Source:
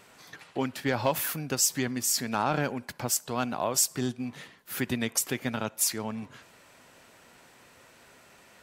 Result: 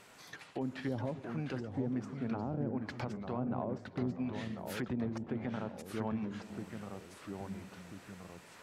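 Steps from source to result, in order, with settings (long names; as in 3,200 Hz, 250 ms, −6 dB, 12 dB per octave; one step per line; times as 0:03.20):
treble cut that deepens with the level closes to 410 Hz, closed at −24 dBFS
brickwall limiter −24.5 dBFS, peak gain reduction 8.5 dB
delay with pitch and tempo change per echo 612 ms, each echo −2 semitones, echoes 3, each echo −6 dB
on a send: echo through a band-pass that steps 147 ms, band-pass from 210 Hz, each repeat 0.7 octaves, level −12 dB
on the sum: level −2.5 dB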